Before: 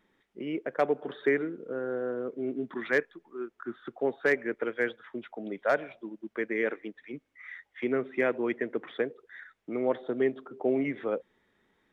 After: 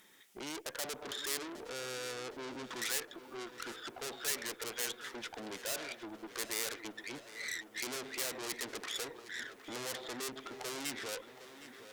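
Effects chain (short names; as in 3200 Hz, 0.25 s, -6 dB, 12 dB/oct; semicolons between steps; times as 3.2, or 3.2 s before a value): tube stage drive 43 dB, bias 0.6; tilt +3 dB/oct; in parallel at 0 dB: compressor, threshold -58 dBFS, peak gain reduction 18.5 dB; on the sum: tone controls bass +2 dB, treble +10 dB; darkening echo 0.763 s, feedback 74%, low-pass 4500 Hz, level -13 dB; gain +2 dB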